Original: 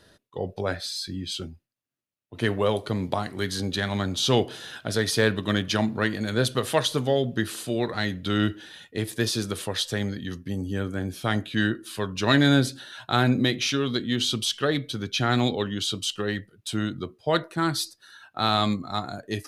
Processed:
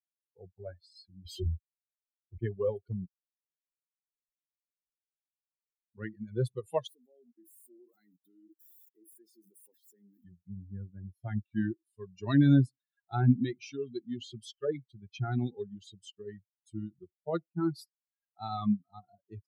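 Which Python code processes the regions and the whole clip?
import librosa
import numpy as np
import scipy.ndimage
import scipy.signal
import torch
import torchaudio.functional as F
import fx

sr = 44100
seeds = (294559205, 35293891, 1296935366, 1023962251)

y = fx.chain(x, sr, fx.doubler(ms=24.0, db=-6.0),
    fx.leveller(passes=3), at=(1.25, 2.38))
y = fx.chain(y, sr, fx.tube_stage(drive_db=37.0, bias=0.4),
    fx.air_absorb(metres=120.0),
    fx.spectral_comp(ratio=4.0), at=(3.06, 5.95))
y = fx.chain(y, sr, fx.crossing_spikes(level_db=-24.5),
    fx.highpass_res(hz=270.0, q=2.1),
    fx.level_steps(step_db=17), at=(6.87, 10.24))
y = fx.bin_expand(y, sr, power=3.0)
y = fx.tilt_shelf(y, sr, db=9.5, hz=900.0)
y = y * librosa.db_to_amplitude(-6.5)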